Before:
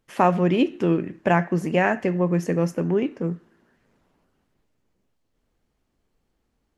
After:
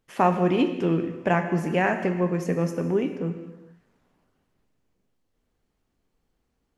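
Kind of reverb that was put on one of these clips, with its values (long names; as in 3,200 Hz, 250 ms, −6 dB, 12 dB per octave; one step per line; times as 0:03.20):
reverb whose tail is shaped and stops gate 480 ms falling, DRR 7 dB
level −2.5 dB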